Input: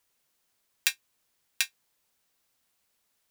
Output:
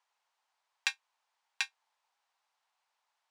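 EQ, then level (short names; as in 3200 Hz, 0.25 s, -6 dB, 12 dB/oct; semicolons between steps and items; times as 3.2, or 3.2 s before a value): resonant high-pass 860 Hz, resonance Q 3.4; air absorption 93 m; -3.5 dB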